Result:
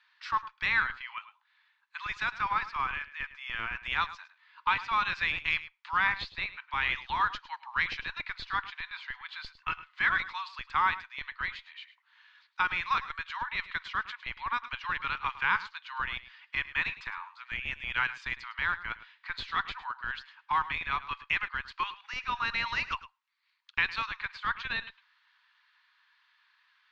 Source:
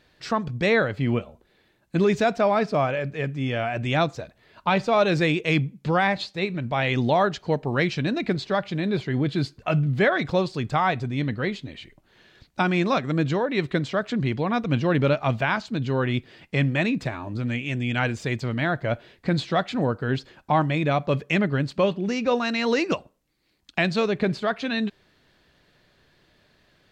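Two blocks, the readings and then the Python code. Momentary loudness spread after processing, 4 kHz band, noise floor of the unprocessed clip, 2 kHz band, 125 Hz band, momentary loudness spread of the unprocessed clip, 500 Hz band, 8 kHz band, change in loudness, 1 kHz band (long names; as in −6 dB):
12 LU, −5.0 dB, −63 dBFS, −1.5 dB, −26.0 dB, 7 LU, −32.0 dB, below −10 dB, −7.5 dB, −4.5 dB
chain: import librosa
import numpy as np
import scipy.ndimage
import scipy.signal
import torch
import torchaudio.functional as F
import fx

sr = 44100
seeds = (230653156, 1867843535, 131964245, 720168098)

p1 = scipy.signal.sosfilt(scipy.signal.butter(12, 930.0, 'highpass', fs=sr, output='sos'), x)
p2 = fx.schmitt(p1, sr, flips_db=-24.5)
p3 = p1 + (p2 * 10.0 ** (-11.0 / 20.0))
p4 = fx.air_absorb(p3, sr, metres=220.0)
y = p4 + 10.0 ** (-16.0 / 20.0) * np.pad(p4, (int(106 * sr / 1000.0), 0))[:len(p4)]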